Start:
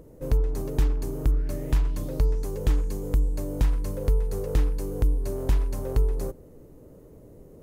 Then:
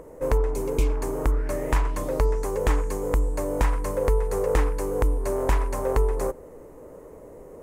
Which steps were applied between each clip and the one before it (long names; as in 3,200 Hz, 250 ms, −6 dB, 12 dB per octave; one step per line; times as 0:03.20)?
healed spectral selection 0:00.56–0:00.92, 580–2,100 Hz
octave-band graphic EQ 125/500/1,000/2,000/4,000/8,000 Hz −5/+7/+12/+9/−3/+8 dB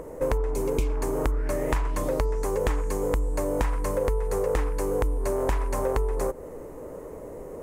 downward compressor 4 to 1, threshold −28 dBFS, peak gain reduction 10 dB
level +5 dB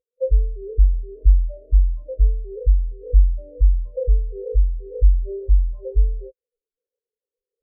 every bin expanded away from the loudest bin 4 to 1
level +2.5 dB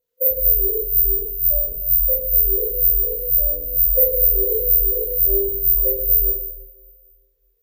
bad sample-rate conversion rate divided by 3×, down none, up zero stuff
compressor whose output falls as the input rises −17 dBFS, ratio −0.5
coupled-rooms reverb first 0.78 s, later 2.2 s, DRR −6 dB
level −6.5 dB